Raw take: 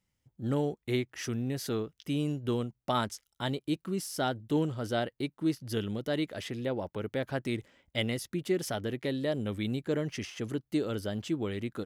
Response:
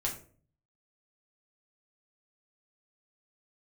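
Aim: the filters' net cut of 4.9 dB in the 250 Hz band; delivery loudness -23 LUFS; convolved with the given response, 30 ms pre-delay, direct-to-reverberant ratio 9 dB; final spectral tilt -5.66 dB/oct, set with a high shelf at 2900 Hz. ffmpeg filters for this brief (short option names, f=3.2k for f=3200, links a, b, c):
-filter_complex "[0:a]equalizer=f=250:t=o:g=-6.5,highshelf=f=2.9k:g=-8,asplit=2[a][b];[1:a]atrim=start_sample=2205,adelay=30[c];[b][c]afir=irnorm=-1:irlink=0,volume=-12.5dB[d];[a][d]amix=inputs=2:normalize=0,volume=12.5dB"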